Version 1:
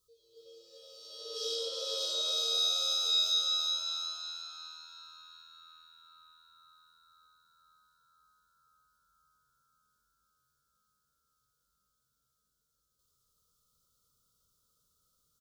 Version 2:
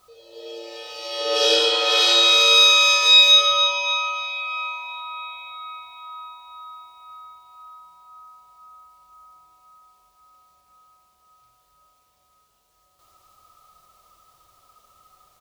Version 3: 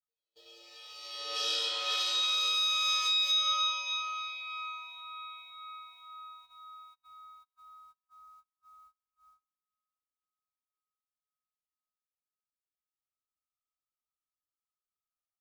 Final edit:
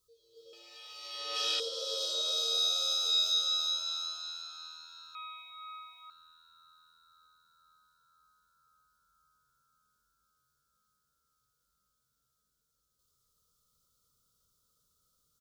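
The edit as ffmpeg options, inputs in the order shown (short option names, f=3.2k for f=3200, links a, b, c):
-filter_complex "[2:a]asplit=2[a][b];[0:a]asplit=3[c][d][e];[c]atrim=end=0.532[f];[a]atrim=start=0.528:end=1.602[g];[d]atrim=start=1.598:end=5.152[h];[b]atrim=start=5.148:end=6.102[i];[e]atrim=start=6.098[j];[f][g]acrossfade=d=0.004:c1=hsin:c2=hsin[k];[k][h]acrossfade=d=0.004:c1=hsin:c2=hsin[l];[l][i]acrossfade=d=0.004:c1=hsin:c2=hsin[m];[m][j]acrossfade=d=0.004:c1=hsin:c2=hsin"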